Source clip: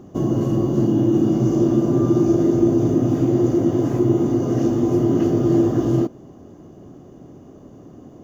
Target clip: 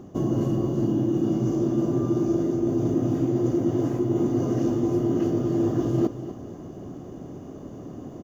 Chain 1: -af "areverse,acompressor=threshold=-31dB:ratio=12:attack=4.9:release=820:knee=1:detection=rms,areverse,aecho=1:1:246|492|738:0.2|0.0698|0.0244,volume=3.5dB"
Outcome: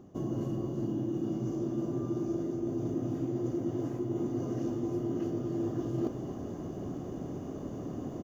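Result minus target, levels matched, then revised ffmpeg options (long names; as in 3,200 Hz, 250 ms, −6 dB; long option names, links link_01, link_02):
downward compressor: peak gain reduction +9.5 dB
-af "areverse,acompressor=threshold=-20.5dB:ratio=12:attack=4.9:release=820:knee=1:detection=rms,areverse,aecho=1:1:246|492|738:0.2|0.0698|0.0244,volume=3.5dB"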